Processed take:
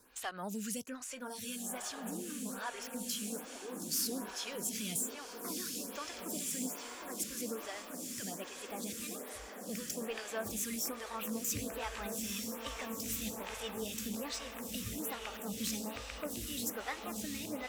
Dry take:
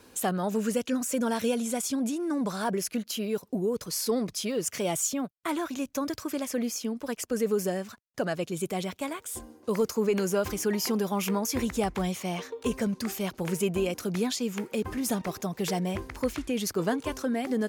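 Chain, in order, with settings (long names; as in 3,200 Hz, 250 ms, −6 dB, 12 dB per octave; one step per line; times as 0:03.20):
pitch glide at a constant tempo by +3 semitones starting unshifted
parametric band 420 Hz −13.5 dB 2.9 octaves
hard clipping −28.5 dBFS, distortion −18 dB
feedback delay with all-pass diffusion 1,623 ms, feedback 60%, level −3.5 dB
phaser with staggered stages 1.2 Hz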